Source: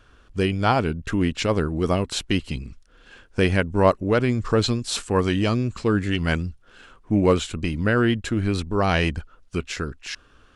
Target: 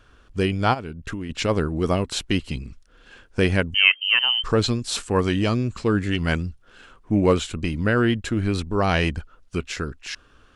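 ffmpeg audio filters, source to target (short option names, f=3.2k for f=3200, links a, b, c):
-filter_complex "[0:a]asplit=3[a][b][c];[a]afade=t=out:st=0.73:d=0.02[d];[b]acompressor=threshold=-28dB:ratio=8,afade=t=in:st=0.73:d=0.02,afade=t=out:st=1.29:d=0.02[e];[c]afade=t=in:st=1.29:d=0.02[f];[d][e][f]amix=inputs=3:normalize=0,asettb=1/sr,asplit=3[g][h][i];[g]atrim=end=3.744[j];[h]atrim=start=3.74:end=4.44,asetpts=PTS-STARTPTS,afade=t=in:d=0.004:c=qsin,afade=t=out:st=0.696:d=0.004:c=qsin,lowpass=f=2.7k:t=q:w=0.5098,lowpass=f=2.7k:t=q:w=0.6013,lowpass=f=2.7k:t=q:w=0.9,lowpass=f=2.7k:t=q:w=2.563,afreqshift=-3200[k];[i]atrim=start=4.436[l];[j][k]acrossfade=d=0.004:c1=hsin:c2=qsin[m];[m][l]acrossfade=d=0.004:c1=qsin:c2=hsin"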